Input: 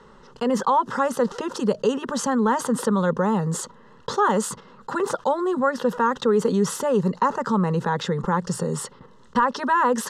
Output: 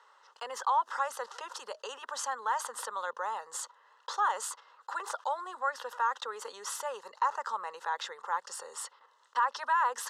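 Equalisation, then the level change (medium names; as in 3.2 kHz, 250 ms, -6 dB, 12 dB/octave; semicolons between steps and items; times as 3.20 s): high-pass 710 Hz 24 dB/octave; -7.0 dB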